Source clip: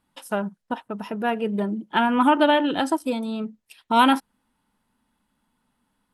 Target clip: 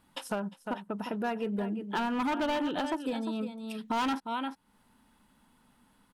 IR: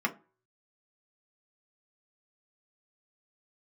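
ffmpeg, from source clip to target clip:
-filter_complex "[0:a]acrossover=split=6800[link_01][link_02];[link_02]acompressor=threshold=-52dB:ratio=4:attack=1:release=60[link_03];[link_01][link_03]amix=inputs=2:normalize=0,aecho=1:1:351:0.251,asoftclip=type=hard:threshold=-17.5dB,acompressor=threshold=-44dB:ratio=2.5,volume=6.5dB"

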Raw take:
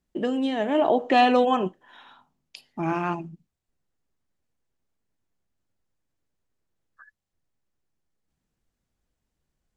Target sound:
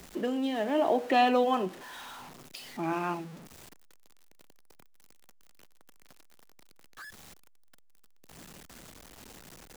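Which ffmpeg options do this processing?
ffmpeg -i in.wav -filter_complex "[0:a]aeval=exprs='val(0)+0.5*0.0168*sgn(val(0))':channel_layout=same,acrossover=split=160|820[link_01][link_02][link_03];[link_01]acompressor=threshold=-52dB:ratio=10[link_04];[link_04][link_02][link_03]amix=inputs=3:normalize=0,volume=-5.5dB" out.wav

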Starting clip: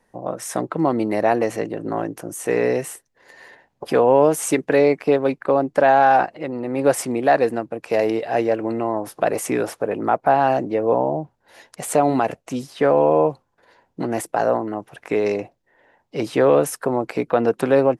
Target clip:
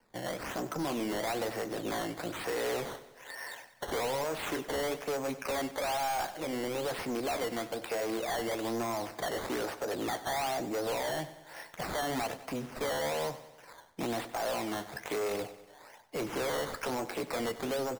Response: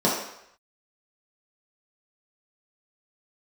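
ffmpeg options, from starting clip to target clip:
-filter_complex "[0:a]highshelf=frequency=9100:gain=-6,acrossover=split=170|660|2200[link_01][link_02][link_03][link_04];[link_03]dynaudnorm=framelen=170:gausssize=11:maxgain=11.5dB[link_05];[link_01][link_02][link_05][link_04]amix=inputs=4:normalize=0,alimiter=limit=-6dB:level=0:latency=1,acompressor=threshold=-24dB:ratio=2,flanger=delay=8.6:depth=4.7:regen=-66:speed=0.57:shape=sinusoidal,acrusher=samples=12:mix=1:aa=0.000001:lfo=1:lforange=12:lforate=1.1,asoftclip=type=tanh:threshold=-30dB,aecho=1:1:95|190|285|380|475|570:0.178|0.101|0.0578|0.0329|0.0188|0.0107"

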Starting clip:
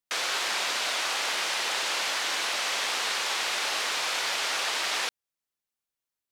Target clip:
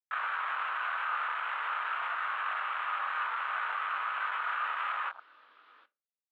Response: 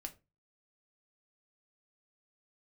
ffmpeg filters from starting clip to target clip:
-filter_complex "[0:a]firequalizer=gain_entry='entry(430,0);entry(680,-5);entry(1200,11);entry(2000,-6)':delay=0.05:min_phase=1,aecho=1:1:748:0.1,alimiter=level_in=5.5dB:limit=-24dB:level=0:latency=1:release=82,volume=-5.5dB,flanger=delay=19:depth=6.5:speed=0.49,acrusher=bits=8:mix=0:aa=0.000001,highpass=frequency=190:width_type=q:width=0.5412,highpass=frequency=190:width_type=q:width=1.307,lowpass=frequency=3500:width_type=q:width=0.5176,lowpass=frequency=3500:width_type=q:width=0.7071,lowpass=frequency=3500:width_type=q:width=1.932,afreqshift=56,asplit=2[link_01][link_02];[1:a]atrim=start_sample=2205[link_03];[link_02][link_03]afir=irnorm=-1:irlink=0,volume=3.5dB[link_04];[link_01][link_04]amix=inputs=2:normalize=0,afwtdn=0.0141,volume=2.5dB"

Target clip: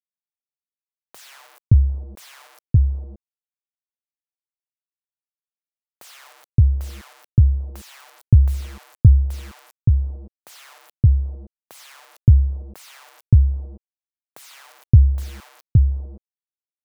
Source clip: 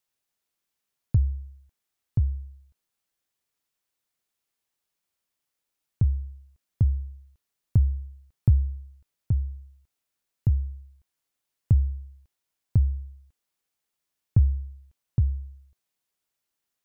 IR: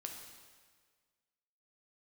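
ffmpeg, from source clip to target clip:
-filter_complex "[0:a]acrusher=bits=7:mix=0:aa=0.000001,acrossover=split=640[link_01][link_02];[link_01]adelay=570[link_03];[link_03][link_02]amix=inputs=2:normalize=0,volume=8.5dB"

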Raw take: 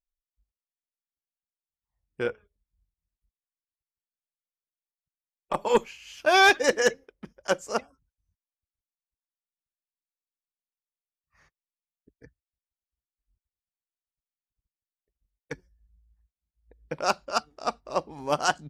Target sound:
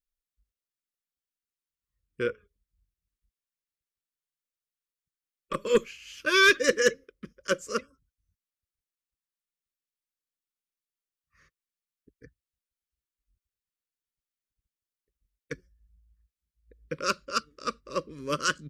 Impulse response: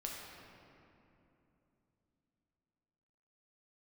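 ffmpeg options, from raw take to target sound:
-af "asuperstop=centerf=780:order=8:qfactor=1.5"

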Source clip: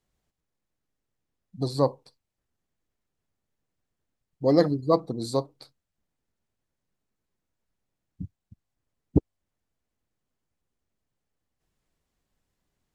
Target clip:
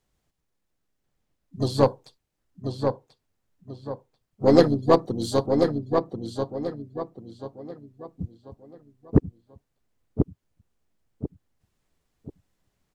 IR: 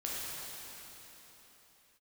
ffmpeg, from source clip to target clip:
-filter_complex "[0:a]asplit=3[link_01][link_02][link_03];[link_02]asetrate=35002,aresample=44100,atempo=1.25992,volume=-9dB[link_04];[link_03]asetrate=66075,aresample=44100,atempo=0.66742,volume=-17dB[link_05];[link_01][link_04][link_05]amix=inputs=3:normalize=0,asplit=2[link_06][link_07];[link_07]adelay=1038,lowpass=frequency=3300:poles=1,volume=-5dB,asplit=2[link_08][link_09];[link_09]adelay=1038,lowpass=frequency=3300:poles=1,volume=0.35,asplit=2[link_10][link_11];[link_11]adelay=1038,lowpass=frequency=3300:poles=1,volume=0.35,asplit=2[link_12][link_13];[link_13]adelay=1038,lowpass=frequency=3300:poles=1,volume=0.35[link_14];[link_06][link_08][link_10][link_12][link_14]amix=inputs=5:normalize=0,aeval=exprs='0.596*(cos(1*acos(clip(val(0)/0.596,-1,1)))-cos(1*PI/2))+0.0237*(cos(8*acos(clip(val(0)/0.596,-1,1)))-cos(8*PI/2))':channel_layout=same,volume=3dB"

